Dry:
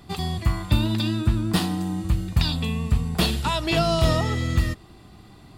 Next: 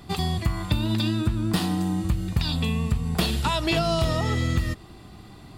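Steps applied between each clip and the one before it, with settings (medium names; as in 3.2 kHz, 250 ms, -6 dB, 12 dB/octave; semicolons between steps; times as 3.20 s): compression, threshold -22 dBFS, peak gain reduction 8.5 dB; trim +2.5 dB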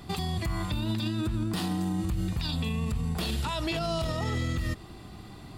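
peak limiter -22 dBFS, peak gain reduction 11.5 dB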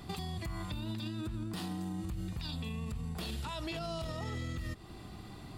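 compression 2:1, threshold -38 dBFS, peak gain reduction 7 dB; trim -2.5 dB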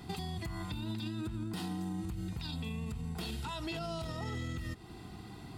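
comb of notches 580 Hz; trim +1 dB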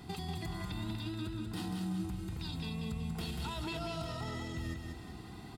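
feedback delay 189 ms, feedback 48%, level -4.5 dB; trim -1.5 dB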